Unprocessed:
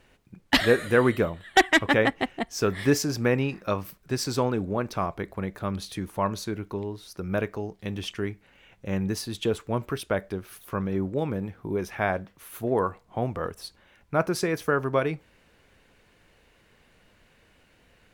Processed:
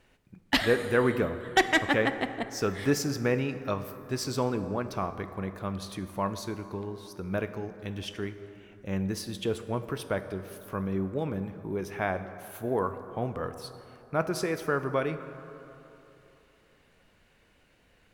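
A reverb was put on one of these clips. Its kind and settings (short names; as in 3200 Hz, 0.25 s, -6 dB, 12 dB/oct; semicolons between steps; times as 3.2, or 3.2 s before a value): plate-style reverb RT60 3.2 s, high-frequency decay 0.4×, DRR 10 dB; gain -4 dB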